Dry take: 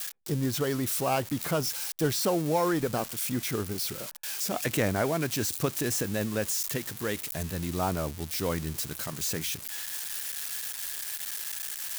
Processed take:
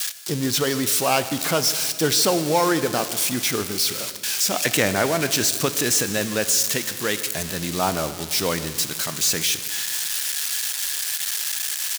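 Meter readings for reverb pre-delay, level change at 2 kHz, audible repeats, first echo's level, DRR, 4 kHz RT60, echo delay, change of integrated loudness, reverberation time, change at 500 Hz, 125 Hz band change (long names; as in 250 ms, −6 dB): 5 ms, +10.0 dB, 1, −19.5 dB, 11.0 dB, 2.0 s, 153 ms, +8.5 dB, 2.2 s, +6.0 dB, +2.0 dB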